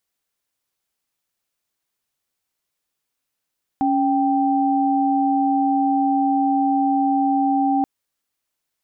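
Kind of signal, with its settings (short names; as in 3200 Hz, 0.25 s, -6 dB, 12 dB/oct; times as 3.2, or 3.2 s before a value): chord C#4/G5 sine, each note -18.5 dBFS 4.03 s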